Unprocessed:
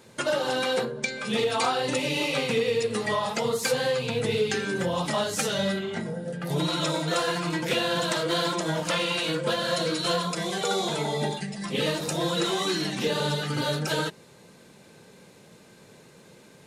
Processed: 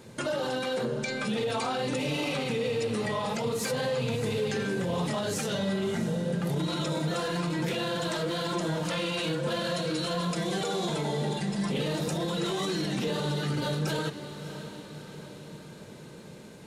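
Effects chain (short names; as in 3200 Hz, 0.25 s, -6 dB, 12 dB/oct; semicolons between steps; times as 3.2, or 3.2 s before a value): low shelf 370 Hz +8 dB; limiter -22.5 dBFS, peak gain reduction 11.5 dB; on a send: diffused feedback echo 0.636 s, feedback 56%, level -11.5 dB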